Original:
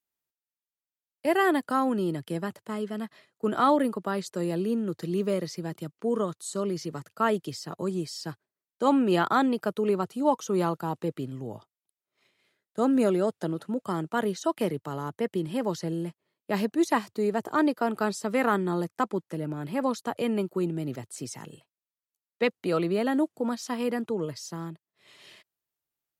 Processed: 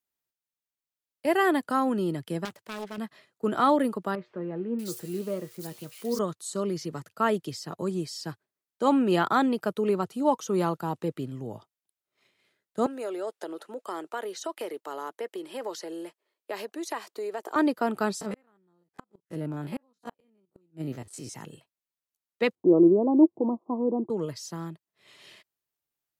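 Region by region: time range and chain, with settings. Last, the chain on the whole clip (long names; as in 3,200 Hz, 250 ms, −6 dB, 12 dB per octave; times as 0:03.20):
0:02.45–0:02.98: phase distortion by the signal itself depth 0.53 ms + low-shelf EQ 460 Hz −7.5 dB
0:04.15–0:06.19: spike at every zero crossing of −31 dBFS + tuned comb filter 120 Hz, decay 0.18 s + multiband delay without the direct sound lows, highs 640 ms, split 2,200 Hz
0:12.86–0:17.56: downward compressor, threshold −26 dBFS + high-pass filter 360 Hz 24 dB per octave
0:18.21–0:21.36: spectrum averaged block by block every 50 ms + gate with flip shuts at −23 dBFS, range −40 dB
0:22.55–0:24.10: Butterworth low-pass 1,100 Hz 96 dB per octave + parametric band 340 Hz +13 dB 0.4 octaves
whole clip: no processing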